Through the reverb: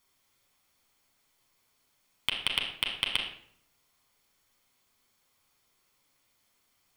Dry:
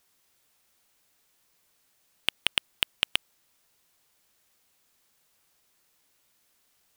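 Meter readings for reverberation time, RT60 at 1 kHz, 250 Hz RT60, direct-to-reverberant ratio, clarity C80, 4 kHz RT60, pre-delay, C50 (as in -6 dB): 0.65 s, 0.60 s, 0.85 s, -1.0 dB, 8.5 dB, 0.45 s, 8 ms, 5.5 dB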